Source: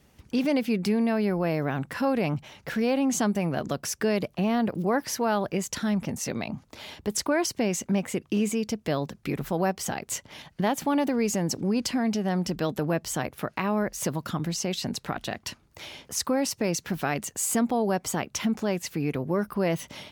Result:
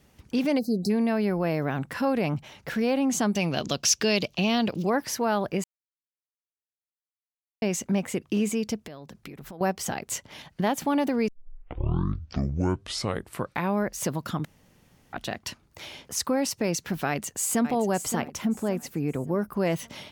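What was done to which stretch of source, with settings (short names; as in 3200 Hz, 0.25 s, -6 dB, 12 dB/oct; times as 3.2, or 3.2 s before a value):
0.59–0.9 spectral delete 790–3900 Hz
3.35–4.9 band shelf 4100 Hz +12 dB
5.64–7.62 mute
8.85–9.61 compressor 10:1, threshold -38 dBFS
11.28 tape start 2.55 s
14.45–15.13 room tone
17.07–17.72 echo throw 0.57 s, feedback 40%, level -10 dB
18.22–19.57 bell 3500 Hz -7.5 dB 2.4 oct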